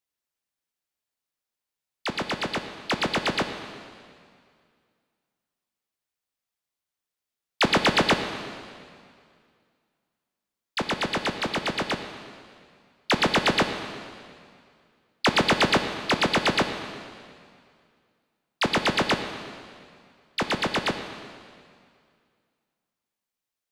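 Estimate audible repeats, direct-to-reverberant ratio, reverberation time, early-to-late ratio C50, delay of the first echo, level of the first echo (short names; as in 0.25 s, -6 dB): none, 7.0 dB, 2.2 s, 8.0 dB, none, none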